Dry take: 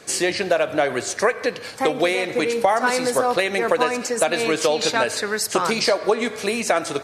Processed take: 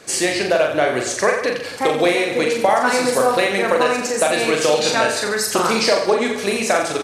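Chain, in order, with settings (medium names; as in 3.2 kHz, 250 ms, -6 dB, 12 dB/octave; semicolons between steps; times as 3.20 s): crackle 17 per s -44 dBFS; reverse bouncing-ball echo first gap 40 ms, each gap 1.15×, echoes 5; trim +1 dB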